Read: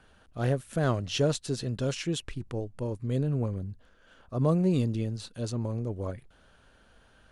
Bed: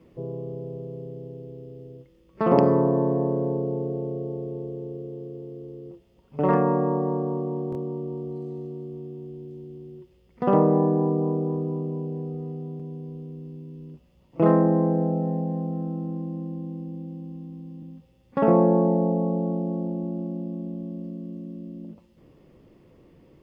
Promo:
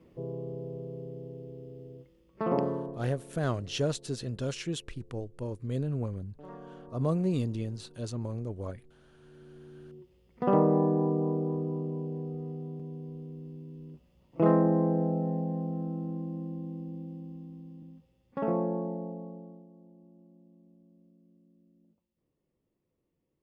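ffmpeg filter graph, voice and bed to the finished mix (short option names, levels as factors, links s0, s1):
-filter_complex "[0:a]adelay=2600,volume=0.668[s0];[1:a]volume=7.5,afade=t=out:st=2.05:d=0.97:silence=0.0794328,afade=t=in:st=9.11:d=1.07:silence=0.0841395,afade=t=out:st=16.99:d=2.69:silence=0.0749894[s1];[s0][s1]amix=inputs=2:normalize=0"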